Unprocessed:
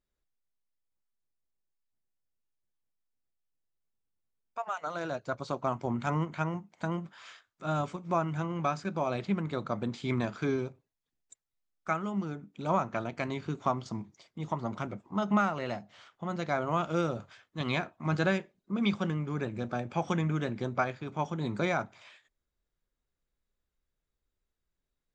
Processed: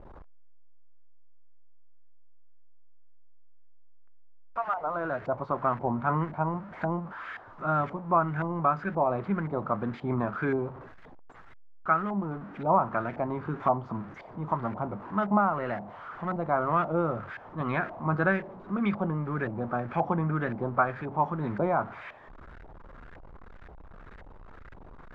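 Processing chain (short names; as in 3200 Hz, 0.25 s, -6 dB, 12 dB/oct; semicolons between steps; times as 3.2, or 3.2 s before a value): zero-crossing step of -40 dBFS; LFO low-pass saw up 1.9 Hz 770–1800 Hz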